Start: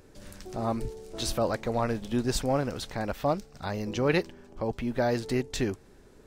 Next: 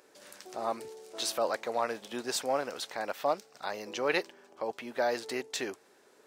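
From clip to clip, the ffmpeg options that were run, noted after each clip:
-af "highpass=510"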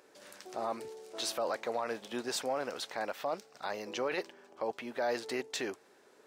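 -af "highshelf=f=5.5k:g=-4.5,alimiter=level_in=0.5dB:limit=-24dB:level=0:latency=1:release=12,volume=-0.5dB"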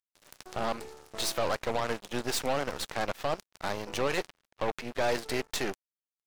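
-af "aeval=exprs='0.0631*(cos(1*acos(clip(val(0)/0.0631,-1,1)))-cos(1*PI/2))+0.0112*(cos(6*acos(clip(val(0)/0.0631,-1,1)))-cos(6*PI/2))':c=same,aeval=exprs='sgn(val(0))*max(abs(val(0))-0.00316,0)':c=same,volume=4.5dB"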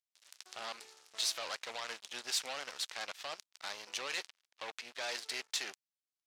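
-af "bandpass=f=4.8k:t=q:w=0.75:csg=0"

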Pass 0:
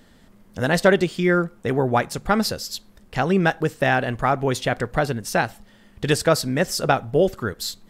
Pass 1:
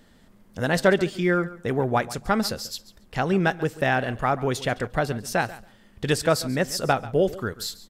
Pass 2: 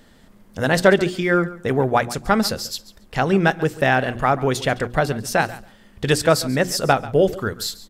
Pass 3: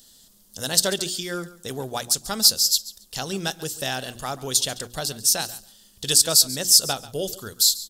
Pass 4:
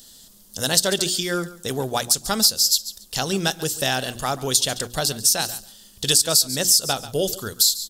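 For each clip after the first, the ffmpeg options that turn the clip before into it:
-af "aecho=1:1:139|278:0.133|0.0213,volume=-3dB"
-af "bandreject=f=60:t=h:w=6,bandreject=f=120:t=h:w=6,bandreject=f=180:t=h:w=6,bandreject=f=240:t=h:w=6,bandreject=f=300:t=h:w=6,bandreject=f=360:t=h:w=6,volume=5dB"
-af "aexciter=amount=13.9:drive=4:freq=3.3k,volume=-12.5dB"
-af "acompressor=threshold=-20dB:ratio=4,volume=5.5dB"

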